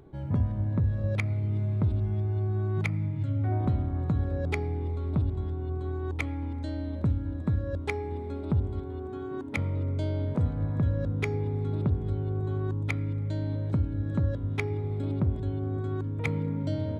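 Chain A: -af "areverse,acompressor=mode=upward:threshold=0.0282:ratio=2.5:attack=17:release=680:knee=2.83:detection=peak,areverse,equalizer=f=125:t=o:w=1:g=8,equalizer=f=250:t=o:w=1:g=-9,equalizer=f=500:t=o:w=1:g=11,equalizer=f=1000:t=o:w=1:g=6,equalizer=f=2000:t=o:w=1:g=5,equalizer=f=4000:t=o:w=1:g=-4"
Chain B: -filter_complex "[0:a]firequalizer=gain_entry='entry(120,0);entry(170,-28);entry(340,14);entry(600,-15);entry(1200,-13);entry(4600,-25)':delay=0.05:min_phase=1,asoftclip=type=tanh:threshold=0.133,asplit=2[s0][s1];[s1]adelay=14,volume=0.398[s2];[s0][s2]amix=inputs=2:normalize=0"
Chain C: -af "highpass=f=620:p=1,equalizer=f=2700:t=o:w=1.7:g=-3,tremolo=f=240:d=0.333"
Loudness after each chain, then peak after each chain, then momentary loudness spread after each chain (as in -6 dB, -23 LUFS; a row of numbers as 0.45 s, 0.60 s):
-25.5 LUFS, -30.0 LUFS, -42.5 LUFS; -8.0 dBFS, -17.0 dBFS, -20.0 dBFS; 7 LU, 5 LU, 5 LU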